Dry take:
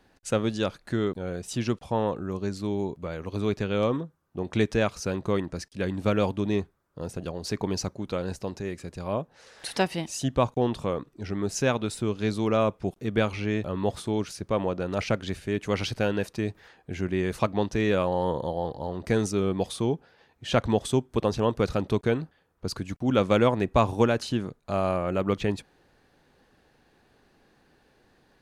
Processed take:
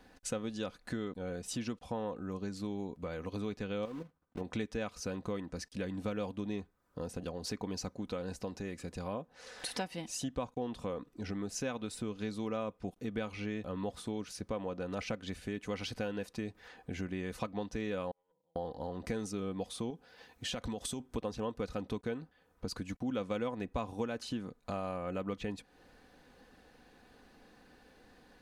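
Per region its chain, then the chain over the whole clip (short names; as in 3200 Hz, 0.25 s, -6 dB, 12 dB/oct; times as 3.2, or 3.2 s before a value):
3.85–4.41 block floating point 3-bit + LPF 1600 Hz 6 dB/oct + level quantiser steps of 11 dB
18.11–18.56 notches 60/120/180/240/300 Hz + gate -21 dBFS, range -53 dB + comb 6.2 ms, depth 69%
19.9–21 high shelf 3600 Hz +8 dB + compressor, threshold -27 dBFS
whole clip: comb 4 ms, depth 43%; compressor 3:1, threshold -40 dBFS; gain +1 dB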